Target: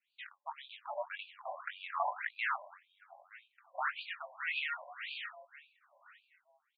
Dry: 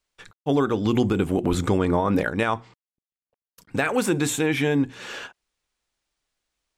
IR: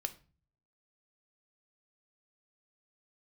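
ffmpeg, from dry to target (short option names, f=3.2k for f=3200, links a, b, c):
-filter_complex "[0:a]acrossover=split=2800[a][b];[b]acompressor=threshold=-49dB:ratio=4:attack=1:release=60[c];[a][c]amix=inputs=2:normalize=0,tiltshelf=f=940:g=-6,bandreject=f=50:t=h:w=6,bandreject=f=100:t=h:w=6,bandreject=f=150:t=h:w=6,bandreject=f=200:t=h:w=6,bandreject=f=250:t=h:w=6,bandreject=f=300:t=h:w=6,bandreject=f=350:t=h:w=6,asplit=2[d][e];[e]acompressor=threshold=-36dB:ratio=6,volume=-1.5dB[f];[d][f]amix=inputs=2:normalize=0,aeval=exprs='val(0)*sin(2*PI*220*n/s)':c=same,asplit=2[g][h];[h]adelay=918,lowpass=f=3k:p=1,volume=-16.5dB,asplit=2[i][j];[j]adelay=918,lowpass=f=3k:p=1,volume=0.24[k];[i][k]amix=inputs=2:normalize=0[l];[g][l]amix=inputs=2:normalize=0,flanger=delay=7.4:depth=3.6:regen=85:speed=1.4:shape=triangular,asplit=2[m][n];[n]adelay=22,volume=-4dB[o];[m][o]amix=inputs=2:normalize=0,afftfilt=real='re*between(b*sr/1024,740*pow(3400/740,0.5+0.5*sin(2*PI*1.8*pts/sr))/1.41,740*pow(3400/740,0.5+0.5*sin(2*PI*1.8*pts/sr))*1.41)':imag='im*between(b*sr/1024,740*pow(3400/740,0.5+0.5*sin(2*PI*1.8*pts/sr))/1.41,740*pow(3400/740,0.5+0.5*sin(2*PI*1.8*pts/sr))*1.41)':win_size=1024:overlap=0.75,volume=-1.5dB"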